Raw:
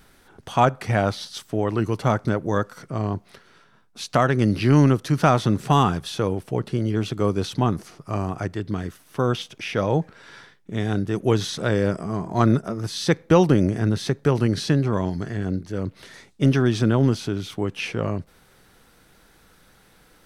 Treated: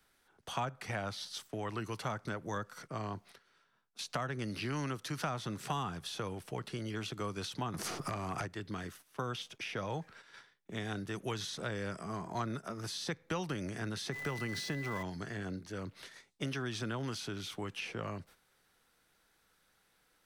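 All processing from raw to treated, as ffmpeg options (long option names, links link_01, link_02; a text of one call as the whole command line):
ffmpeg -i in.wav -filter_complex "[0:a]asettb=1/sr,asplit=3[link_01][link_02][link_03];[link_01]atrim=end=7.744[link_04];[link_02]atrim=start=7.74:end=8.46,asetpts=PTS-STARTPTS,afade=type=in:duration=0.004:curve=qsin,afade=type=out:start_time=0.716:duration=0.004:curve=qsin,acompressor=threshold=-40dB:ratio=4:attack=3.2:release=140:knee=1:detection=peak,aeval=exprs='0.211*sin(PI/2*7.08*val(0)/0.211)':channel_layout=same[link_05];[link_03]atrim=start=8.456[link_06];[link_04][link_05]acrossfade=duration=0.004:curve1=hsin:curve2=qsin[link_07];[link_07][link_06]acrossfade=duration=0.004:curve1=qsin:curve2=hsin,asettb=1/sr,asplit=3[link_08][link_09][link_10];[link_08]atrim=end=14.124[link_11];[link_09]atrim=start=14.12:end=15.03,asetpts=PTS-STARTPTS,afade=type=in:duration=0.004:curve=qsin,afade=type=out:start_time=0.906:duration=0.004:curve=qsin,aeval=exprs='val(0)+0.5*0.0224*sgn(val(0))':channel_layout=same,aeval=exprs='val(0)+0.0224*sin(2*PI*2000*n/s)':channel_layout=same[link_12];[link_10]atrim=start=15.026[link_13];[link_11][link_12]acrossfade=duration=0.004:curve1=hsin:curve2=qsin[link_14];[link_14][link_13]acrossfade=duration=0.004:curve1=qsin:curve2=hsin,agate=range=-10dB:threshold=-43dB:ratio=16:detection=peak,lowshelf=frequency=500:gain=-9.5,acrossover=split=100|200|930[link_15][link_16][link_17][link_18];[link_15]acompressor=threshold=-50dB:ratio=4[link_19];[link_16]acompressor=threshold=-39dB:ratio=4[link_20];[link_17]acompressor=threshold=-38dB:ratio=4[link_21];[link_18]acompressor=threshold=-36dB:ratio=4[link_22];[link_19][link_20][link_21][link_22]amix=inputs=4:normalize=0,volume=-4dB" out.wav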